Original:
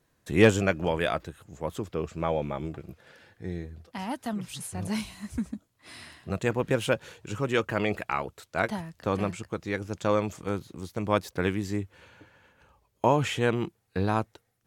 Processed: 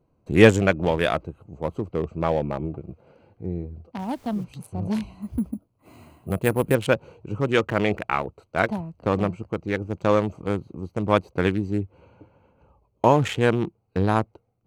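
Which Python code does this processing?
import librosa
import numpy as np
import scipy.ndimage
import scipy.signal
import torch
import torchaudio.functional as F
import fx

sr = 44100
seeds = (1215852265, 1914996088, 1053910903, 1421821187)

y = fx.wiener(x, sr, points=25)
y = fx.dmg_noise_colour(y, sr, seeds[0], colour='pink', level_db=-61.0, at=(3.98, 4.43), fade=0.02)
y = fx.resample_bad(y, sr, factor=4, down='none', up='hold', at=(5.22, 6.75))
y = y * librosa.db_to_amplitude(5.5)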